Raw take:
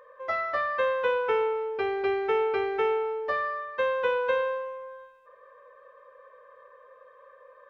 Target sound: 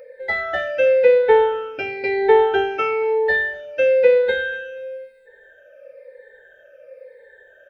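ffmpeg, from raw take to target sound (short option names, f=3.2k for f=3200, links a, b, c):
-filter_complex "[0:a]afftfilt=real='re*pow(10,18/40*sin(2*PI*(0.94*log(max(b,1)*sr/1024/100)/log(2)-(-1)*(pts-256)/sr)))':imag='im*pow(10,18/40*sin(2*PI*(0.94*log(max(b,1)*sr/1024/100)/log(2)-(-1)*(pts-256)/sr)))':win_size=1024:overlap=0.75,asuperstop=centerf=1100:order=12:qfactor=2.8,asplit=2[a][b];[b]aecho=0:1:241|482:0.0794|0.0262[c];[a][c]amix=inputs=2:normalize=0,volume=6dB"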